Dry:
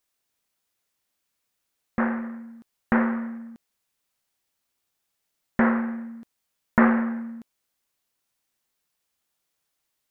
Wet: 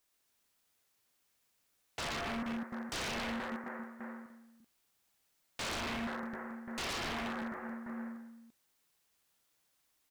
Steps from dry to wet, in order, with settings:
0:02.15–0:03.52: high-pass filter 260 Hz 12 dB per octave
brickwall limiter −16 dBFS, peak gain reduction 11 dB
reverse bouncing-ball delay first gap 120 ms, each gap 1.3×, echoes 5
wave folding −33 dBFS

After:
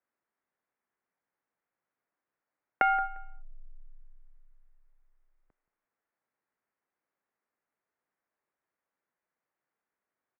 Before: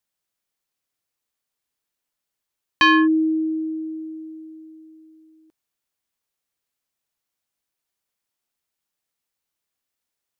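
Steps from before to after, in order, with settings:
downward compressor 6 to 1, threshold −25 dBFS, peak gain reduction 12 dB
repeating echo 175 ms, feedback 21%, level −18 dB
single-sideband voice off tune −300 Hz 510–2,300 Hz
level +2.5 dB

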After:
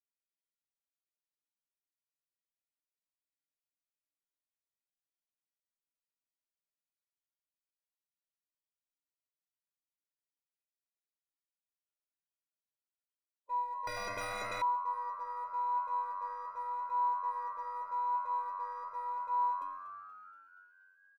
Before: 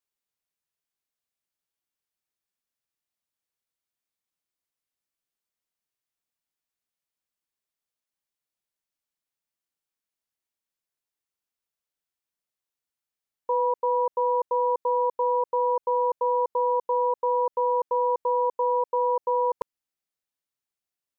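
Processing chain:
spectral magnitudes quantised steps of 15 dB
in parallel at −6.5 dB: hard clipping −27 dBFS, distortion −9 dB
on the sum: pitch vibrato 0.84 Hz 10 cents
stiff-string resonator 290 Hz, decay 0.55 s, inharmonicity 0.03
echo with shifted repeats 238 ms, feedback 64%, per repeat +94 Hz, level −13.5 dB
on a send at −10 dB: convolution reverb, pre-delay 3 ms
0:13.87–0:14.62: on the sum: every bin compressed towards the loudest bin 10 to 1
level −2 dB

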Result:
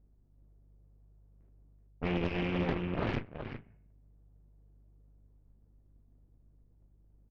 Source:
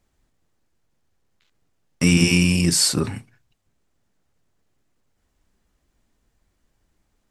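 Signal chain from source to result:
variable-slope delta modulation 16 kbit/s
low-pass that shuts in the quiet parts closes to 380 Hz, open at −18 dBFS
reversed playback
downward compressor 10 to 1, threshold −33 dBFS, peak gain reduction 19 dB
reversed playback
hum with harmonics 50 Hz, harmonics 3, −65 dBFS −9 dB per octave
single-tap delay 379 ms −6.5 dB
on a send at −12 dB: convolution reverb RT60 0.60 s, pre-delay 4 ms
on the sum: harmonic generator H 6 −7 dB, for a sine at −21.5 dBFS
highs frequency-modulated by the lows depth 0.24 ms

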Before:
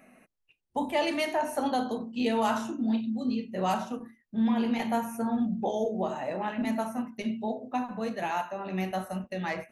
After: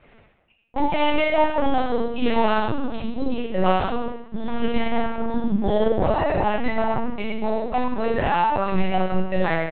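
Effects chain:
0:05.19–0:05.70: dynamic equaliser 990 Hz, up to −8 dB, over −45 dBFS, Q 0.73
leveller curve on the samples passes 2
brickwall limiter −19 dBFS, peak gain reduction 4 dB
ambience of single reflections 11 ms −6.5 dB, 26 ms −14.5 dB, 76 ms −8 dB
dense smooth reverb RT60 0.98 s, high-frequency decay 0.95×, DRR 0.5 dB
linear-prediction vocoder at 8 kHz pitch kept
level +2 dB

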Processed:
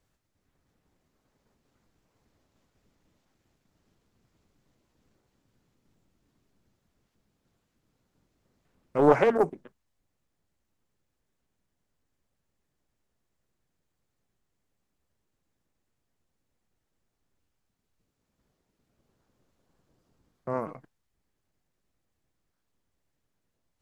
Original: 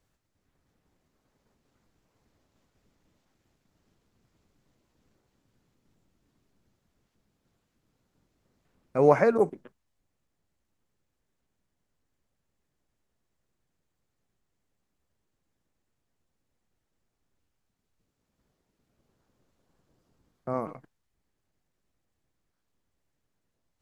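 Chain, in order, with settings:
highs frequency-modulated by the lows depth 0.53 ms

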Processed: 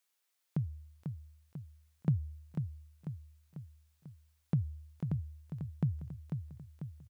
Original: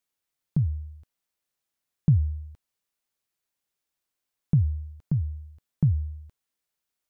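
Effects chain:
high-pass filter 730 Hz 6 dB per octave
on a send: repeating echo 494 ms, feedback 54%, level −6.5 dB
on the sum: level +4.5 dB

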